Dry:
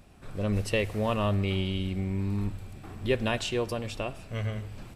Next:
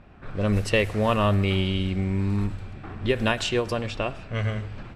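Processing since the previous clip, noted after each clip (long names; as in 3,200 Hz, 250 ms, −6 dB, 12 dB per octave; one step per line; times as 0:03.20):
parametric band 1,500 Hz +4.5 dB 0.91 octaves
low-pass that shuts in the quiet parts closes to 2,400 Hz, open at −22.5 dBFS
every ending faded ahead of time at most 190 dB per second
level +5 dB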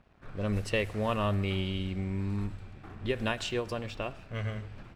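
dead-zone distortion −53.5 dBFS
level −7.5 dB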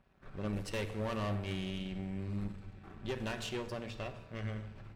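tuned comb filter 89 Hz, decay 1.3 s, harmonics odd, mix 60%
tube saturation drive 38 dB, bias 0.7
rectangular room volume 2,000 cubic metres, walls furnished, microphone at 1.1 metres
level +5 dB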